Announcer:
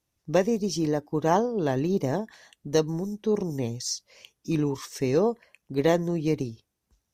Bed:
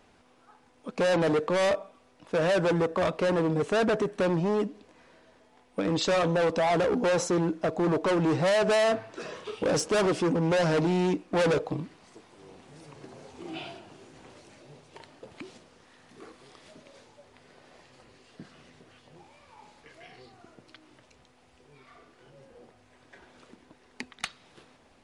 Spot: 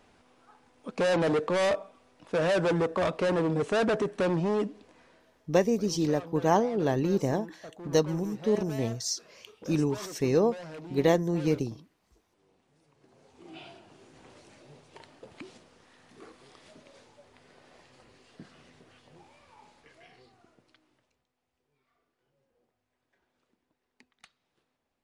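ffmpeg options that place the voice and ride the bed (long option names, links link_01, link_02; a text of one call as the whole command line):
ffmpeg -i stem1.wav -i stem2.wav -filter_complex "[0:a]adelay=5200,volume=-1dB[link_01];[1:a]volume=15dB,afade=type=out:start_time=4.93:duration=0.76:silence=0.141254,afade=type=in:start_time=12.97:duration=1.46:silence=0.158489,afade=type=out:start_time=19.3:duration=1.95:silence=0.1[link_02];[link_01][link_02]amix=inputs=2:normalize=0" out.wav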